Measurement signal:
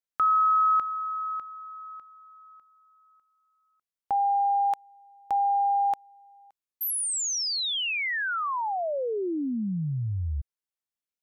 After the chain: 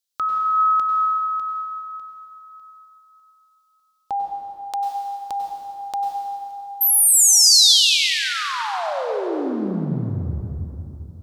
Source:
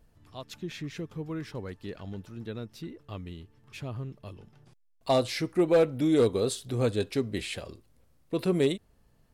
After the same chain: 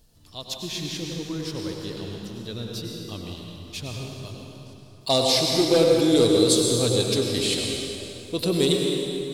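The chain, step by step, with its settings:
high shelf with overshoot 2,800 Hz +10.5 dB, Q 1.5
dense smooth reverb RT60 3.1 s, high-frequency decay 0.7×, pre-delay 85 ms, DRR −0.5 dB
level +1.5 dB

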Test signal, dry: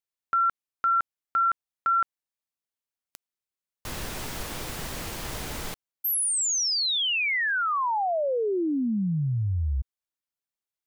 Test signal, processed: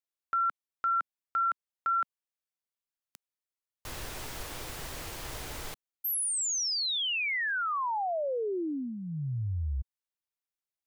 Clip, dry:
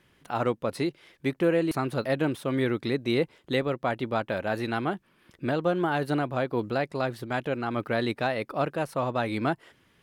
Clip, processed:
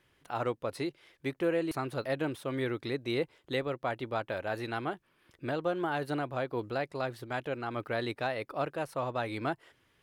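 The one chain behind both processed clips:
parametric band 200 Hz −8 dB 0.66 octaves
level −5 dB

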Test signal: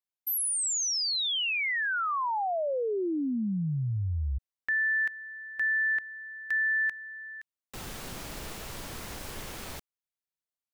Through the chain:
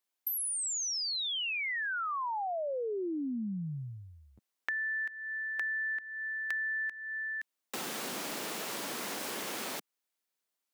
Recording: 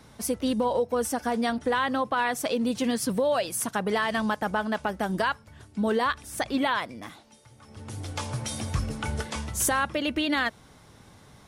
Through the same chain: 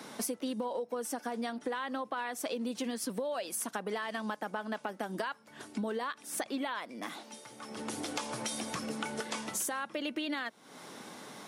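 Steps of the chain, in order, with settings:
high-pass filter 210 Hz 24 dB per octave
downward compressor 6 to 1, threshold −42 dBFS
level +7.5 dB

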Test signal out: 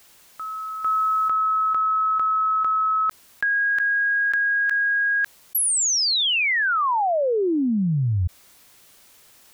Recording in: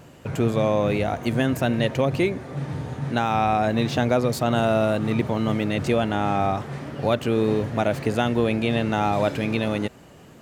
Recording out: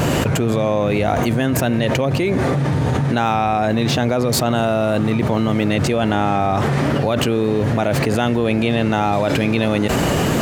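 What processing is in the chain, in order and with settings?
envelope flattener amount 100%

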